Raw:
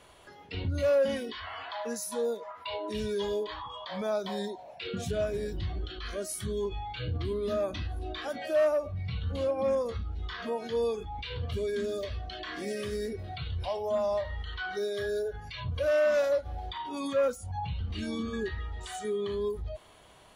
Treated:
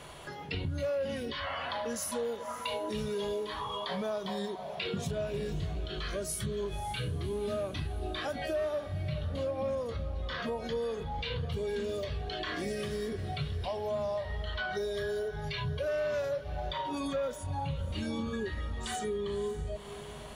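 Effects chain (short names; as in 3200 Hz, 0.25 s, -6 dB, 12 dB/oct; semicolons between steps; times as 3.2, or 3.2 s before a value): bell 150 Hz +14 dB 0.22 oct; compressor 4:1, threshold -42 dBFS, peak gain reduction 16.5 dB; on a send: diffused feedback echo 0.558 s, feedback 54%, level -13 dB; on the sum: gain +8 dB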